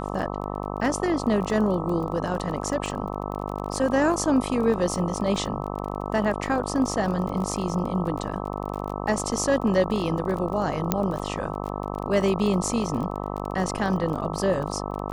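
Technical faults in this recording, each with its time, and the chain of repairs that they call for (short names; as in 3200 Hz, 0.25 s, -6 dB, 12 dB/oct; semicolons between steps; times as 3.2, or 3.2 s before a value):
buzz 50 Hz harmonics 26 -31 dBFS
crackle 27/s -31 dBFS
10.92 pop -6 dBFS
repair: de-click; de-hum 50 Hz, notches 26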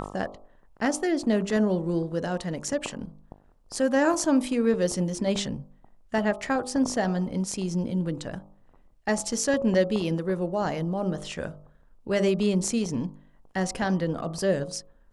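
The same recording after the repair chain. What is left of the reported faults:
none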